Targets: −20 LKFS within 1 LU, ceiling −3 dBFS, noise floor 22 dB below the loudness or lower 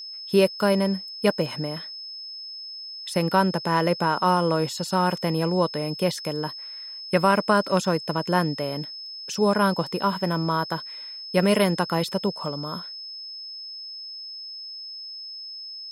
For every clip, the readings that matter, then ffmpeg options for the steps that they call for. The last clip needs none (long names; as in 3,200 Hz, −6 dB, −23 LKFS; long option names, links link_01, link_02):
interfering tone 5,200 Hz; level of the tone −35 dBFS; integrated loudness −25.5 LKFS; sample peak −6.0 dBFS; target loudness −20.0 LKFS
→ -af "bandreject=frequency=5200:width=30"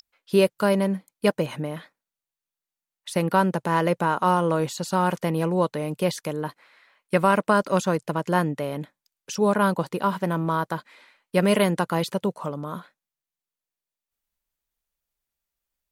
interfering tone none found; integrated loudness −24.0 LKFS; sample peak −6.0 dBFS; target loudness −20.0 LKFS
→ -af "volume=4dB,alimiter=limit=-3dB:level=0:latency=1"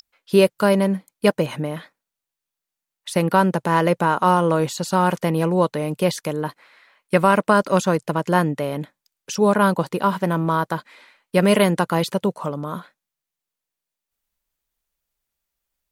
integrated loudness −20.0 LKFS; sample peak −3.0 dBFS; background noise floor −86 dBFS